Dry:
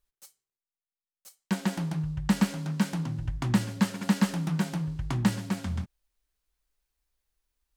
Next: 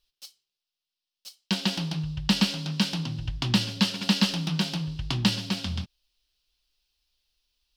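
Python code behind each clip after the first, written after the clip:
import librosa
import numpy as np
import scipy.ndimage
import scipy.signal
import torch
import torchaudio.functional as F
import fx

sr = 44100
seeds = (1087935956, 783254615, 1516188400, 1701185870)

y = fx.band_shelf(x, sr, hz=3800.0, db=14.5, octaves=1.3)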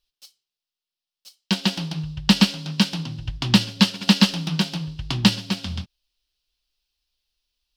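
y = fx.upward_expand(x, sr, threshold_db=-37.0, expansion=1.5)
y = y * 10.0 ** (7.5 / 20.0)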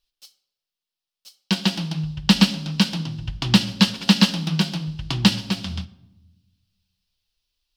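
y = fx.room_shoebox(x, sr, seeds[0], volume_m3=4000.0, walls='furnished', distance_m=0.69)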